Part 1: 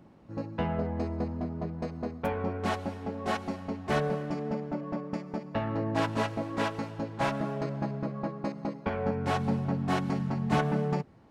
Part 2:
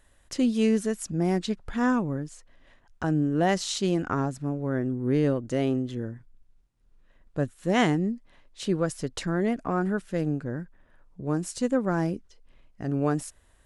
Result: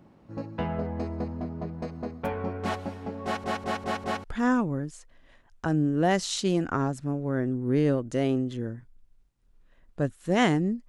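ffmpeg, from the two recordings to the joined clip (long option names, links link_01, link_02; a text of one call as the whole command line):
ffmpeg -i cue0.wav -i cue1.wav -filter_complex "[0:a]apad=whole_dur=10.88,atrim=end=10.88,asplit=5[link_01][link_02][link_03][link_04][link_05];[link_01]atrim=end=3.442[link_06];[link_02]atrim=start=3.238:end=3.442[link_07];[link_03]atrim=start=3.238:end=3.442[link_08];[link_04]atrim=start=3.238:end=3.442[link_09];[link_05]atrim=start=3.238:end=3.442[link_10];[1:a]atrim=start=1.618:end=8.26[link_11];[link_06][link_07]acrossfade=duration=0.004:curve1=hsin:curve2=hsin[link_12];[link_12][link_08]acrossfade=duration=0.004:curve1=hsin:curve2=hsin[link_13];[link_13][link_09]acrossfade=duration=0.004:curve1=hsin:curve2=hsin[link_14];[link_14][link_10]acrossfade=duration=0.004:curve1=hsin:curve2=hsin[link_15];[link_15][link_11]acrossfade=duration=0.004:curve1=hsin:curve2=hsin" out.wav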